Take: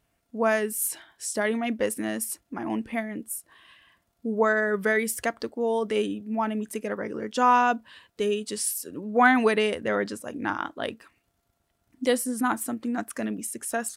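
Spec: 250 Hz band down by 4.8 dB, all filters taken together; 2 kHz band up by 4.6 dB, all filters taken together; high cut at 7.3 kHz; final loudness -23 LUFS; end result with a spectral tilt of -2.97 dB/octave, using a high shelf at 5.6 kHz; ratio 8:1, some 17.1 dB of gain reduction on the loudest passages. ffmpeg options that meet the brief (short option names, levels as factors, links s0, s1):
-af "lowpass=7300,equalizer=f=250:t=o:g=-5.5,equalizer=f=2000:t=o:g=6.5,highshelf=f=5600:g=-3,acompressor=threshold=0.0316:ratio=8,volume=4.22"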